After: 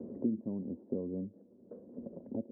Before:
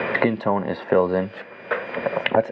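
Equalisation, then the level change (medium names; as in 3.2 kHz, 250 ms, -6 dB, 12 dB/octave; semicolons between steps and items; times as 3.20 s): four-pole ladder low-pass 310 Hz, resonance 40%; distance through air 390 m; peaking EQ 140 Hz -14 dB 0.94 oct; 0.0 dB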